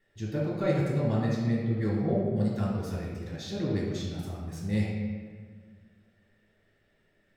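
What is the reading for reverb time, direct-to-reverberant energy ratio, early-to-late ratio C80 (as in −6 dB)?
1.7 s, −5.5 dB, 2.0 dB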